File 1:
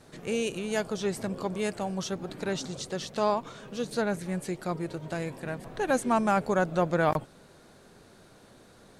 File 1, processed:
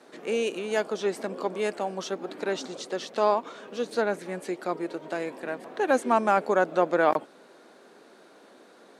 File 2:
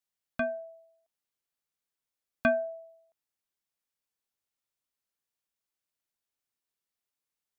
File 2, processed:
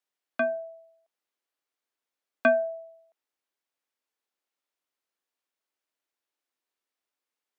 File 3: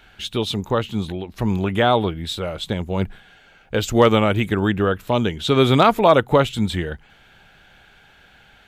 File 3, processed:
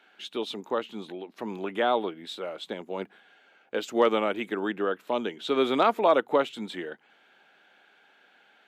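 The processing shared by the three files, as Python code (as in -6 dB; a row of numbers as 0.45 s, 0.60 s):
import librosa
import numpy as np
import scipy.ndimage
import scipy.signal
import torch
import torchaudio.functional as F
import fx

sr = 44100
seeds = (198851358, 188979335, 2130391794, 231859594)

y = scipy.signal.sosfilt(scipy.signal.butter(4, 260.0, 'highpass', fs=sr, output='sos'), x)
y = fx.high_shelf(y, sr, hz=4900.0, db=-10.0)
y = y * 10.0 ** (-9 / 20.0) / np.max(np.abs(y))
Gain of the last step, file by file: +4.0 dB, +5.0 dB, -7.0 dB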